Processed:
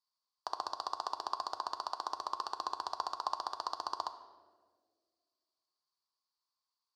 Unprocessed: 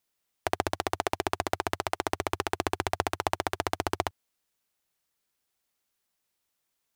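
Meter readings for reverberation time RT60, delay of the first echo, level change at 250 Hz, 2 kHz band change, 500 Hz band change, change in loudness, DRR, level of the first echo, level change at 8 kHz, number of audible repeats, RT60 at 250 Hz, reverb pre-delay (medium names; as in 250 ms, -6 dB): 1.7 s, no echo, -22.5 dB, -19.0 dB, -16.0 dB, -7.5 dB, 8.0 dB, no echo, -13.5 dB, no echo, 2.4 s, 6 ms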